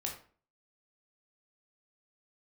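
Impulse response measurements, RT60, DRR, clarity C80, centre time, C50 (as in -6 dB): 0.45 s, -0.5 dB, 11.5 dB, 23 ms, 7.0 dB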